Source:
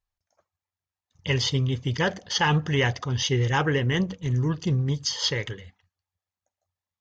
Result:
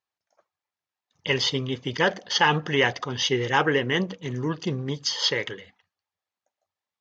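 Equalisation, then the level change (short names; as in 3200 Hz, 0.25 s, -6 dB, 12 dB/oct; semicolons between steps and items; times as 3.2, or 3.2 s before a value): BPF 250–5300 Hz; +3.5 dB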